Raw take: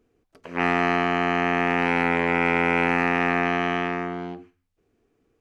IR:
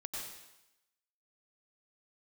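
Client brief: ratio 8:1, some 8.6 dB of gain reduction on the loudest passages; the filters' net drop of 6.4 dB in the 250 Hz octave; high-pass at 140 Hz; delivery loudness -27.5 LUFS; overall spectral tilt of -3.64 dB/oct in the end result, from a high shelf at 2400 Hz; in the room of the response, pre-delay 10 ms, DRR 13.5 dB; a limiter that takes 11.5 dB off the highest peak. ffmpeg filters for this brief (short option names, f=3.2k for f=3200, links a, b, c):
-filter_complex "[0:a]highpass=140,equalizer=f=250:t=o:g=-7.5,highshelf=f=2.4k:g=-6.5,acompressor=threshold=-28dB:ratio=8,alimiter=level_in=3dB:limit=-24dB:level=0:latency=1,volume=-3dB,asplit=2[a][b];[1:a]atrim=start_sample=2205,adelay=10[c];[b][c]afir=irnorm=-1:irlink=0,volume=-13.5dB[d];[a][d]amix=inputs=2:normalize=0,volume=12dB"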